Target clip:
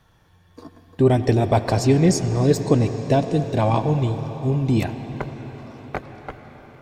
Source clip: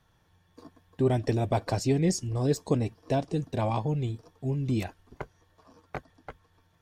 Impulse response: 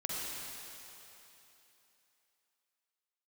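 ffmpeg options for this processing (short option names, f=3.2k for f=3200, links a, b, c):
-filter_complex "[0:a]asplit=2[a][b];[1:a]atrim=start_sample=2205,asetrate=24255,aresample=44100,lowpass=5.1k[c];[b][c]afir=irnorm=-1:irlink=0,volume=-15dB[d];[a][d]amix=inputs=2:normalize=0,volume=7dB"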